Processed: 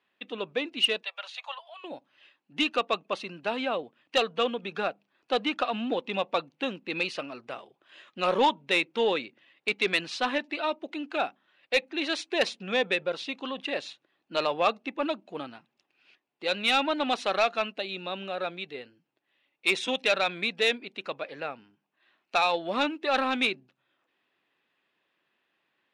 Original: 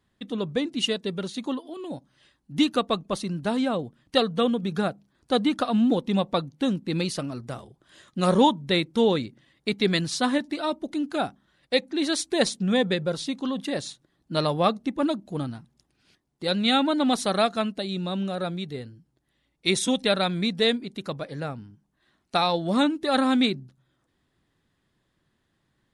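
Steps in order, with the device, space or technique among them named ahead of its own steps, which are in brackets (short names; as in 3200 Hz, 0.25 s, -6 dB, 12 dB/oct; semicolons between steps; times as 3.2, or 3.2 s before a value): 1.03–1.84 steep high-pass 630 Hz 48 dB/oct; intercom (BPF 460–3500 Hz; bell 2600 Hz +11 dB 0.39 oct; soft clip -13.5 dBFS, distortion -18 dB)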